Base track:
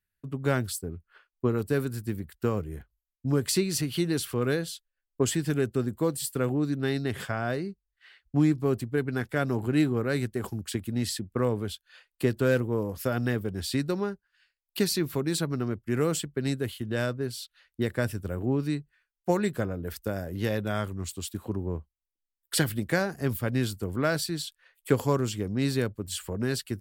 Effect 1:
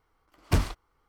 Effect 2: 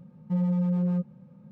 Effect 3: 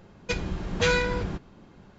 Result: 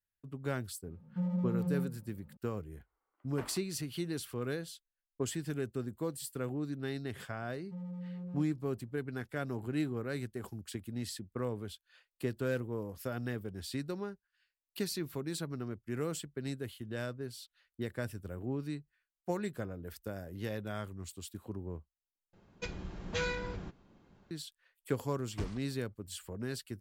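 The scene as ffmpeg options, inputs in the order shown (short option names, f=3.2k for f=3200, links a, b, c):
-filter_complex "[2:a]asplit=2[a][b];[1:a]asplit=2[c][d];[0:a]volume=-10dB[e];[a]flanger=delay=6.6:depth=9.6:regen=-69:speed=1.4:shape=triangular[f];[c]acrossover=split=260 2600:gain=0.0631 1 0.0794[g][h][i];[g][h][i]amix=inputs=3:normalize=0[j];[d]lowpass=f=8.5k:w=0.5412,lowpass=f=8.5k:w=1.3066[k];[e]asplit=2[l][m];[l]atrim=end=22.334[n];[3:a]atrim=end=1.98,asetpts=PTS-STARTPTS,volume=-11.5dB[o];[m]atrim=start=24.306[p];[f]atrim=end=1.51,asetpts=PTS-STARTPTS,volume=-3.5dB,afade=t=in:d=0.004:c=hsin,afade=t=out:st=1.506:d=0.004:c=hsin,adelay=860[q];[j]atrim=end=1.08,asetpts=PTS-STARTPTS,volume=-12.5dB,afade=t=in:d=0.004:c=hsin,afade=t=out:st=1.076:d=0.004:c=hsin,adelay=2860[r];[b]atrim=end=1.51,asetpts=PTS-STARTPTS,volume=-17dB,afade=t=in:d=0.004:c=hsin,afade=t=out:st=1.506:d=0.004:c=hsin,adelay=7410[s];[k]atrim=end=1.08,asetpts=PTS-STARTPTS,volume=-16dB,afade=t=in:d=0.004:c=hsin,afade=t=out:st=1.076:d=0.004:c=hsin,adelay=24860[t];[n][o]acrossfade=d=0.004:c1=hsin:c2=hsin[u];[u][p]acrossfade=d=0.004:c1=hsin:c2=hsin[v];[v][q][r][s][t]amix=inputs=5:normalize=0"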